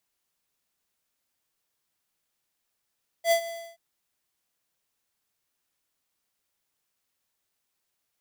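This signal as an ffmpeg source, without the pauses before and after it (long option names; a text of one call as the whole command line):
ffmpeg -f lavfi -i "aevalsrc='0.106*(2*lt(mod(672*t,1),0.5)-1)':duration=0.529:sample_rate=44100,afade=type=in:duration=0.073,afade=type=out:start_time=0.073:duration=0.09:silence=0.168,afade=type=out:start_time=0.23:duration=0.299" out.wav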